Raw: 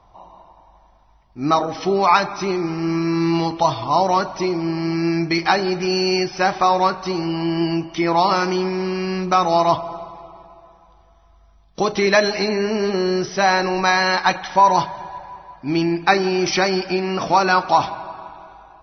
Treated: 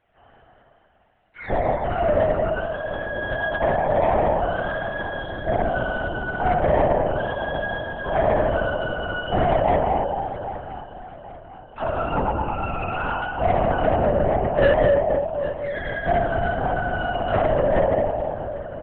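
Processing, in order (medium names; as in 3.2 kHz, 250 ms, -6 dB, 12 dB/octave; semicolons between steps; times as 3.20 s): spectrum inverted on a logarithmic axis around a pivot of 740 Hz; low-pass that closes with the level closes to 780 Hz, closed at -12 dBFS; peaking EQ 2.7 kHz +6.5 dB 1 oct; auto-wah 650–1600 Hz, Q 2.2, down, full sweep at -20 dBFS; 1.89–3.06 s: rippled Chebyshev high-pass 160 Hz, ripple 6 dB; spring tank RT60 2.3 s, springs 52/56 ms, chirp 55 ms, DRR -4.5 dB; saturation -13 dBFS, distortion -13 dB; on a send: feedback delay 803 ms, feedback 54%, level -16 dB; on the sum: LPC vocoder at 8 kHz whisper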